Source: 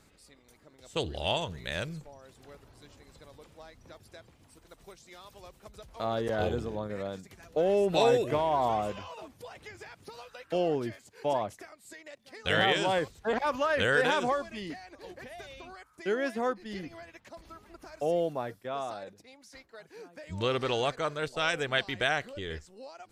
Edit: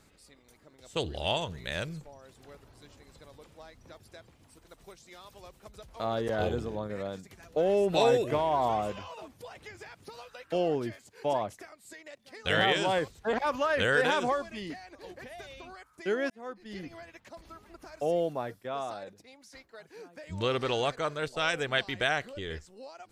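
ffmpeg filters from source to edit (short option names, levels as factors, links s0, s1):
-filter_complex "[0:a]asplit=2[s0][s1];[s0]atrim=end=16.3,asetpts=PTS-STARTPTS,afade=t=out:st=16.296:d=0.004:c=hsin[s2];[s1]atrim=start=16.3,asetpts=PTS-STARTPTS,afade=t=in:d=0.6[s3];[s2][s3]concat=n=2:v=0:a=1"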